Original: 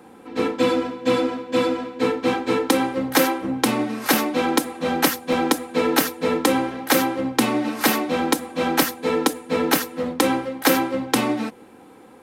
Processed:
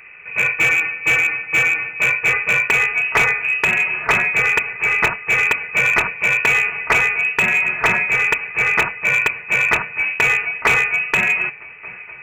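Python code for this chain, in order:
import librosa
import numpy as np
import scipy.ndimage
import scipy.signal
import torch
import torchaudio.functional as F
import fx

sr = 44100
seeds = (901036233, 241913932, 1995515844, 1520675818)

y = fx.freq_invert(x, sr, carrier_hz=2800)
y = fx.echo_swing(y, sr, ms=1182, ratio=1.5, feedback_pct=60, wet_db=-23.5)
y = fx.slew_limit(y, sr, full_power_hz=340.0)
y = y * 10.0 ** (5.0 / 20.0)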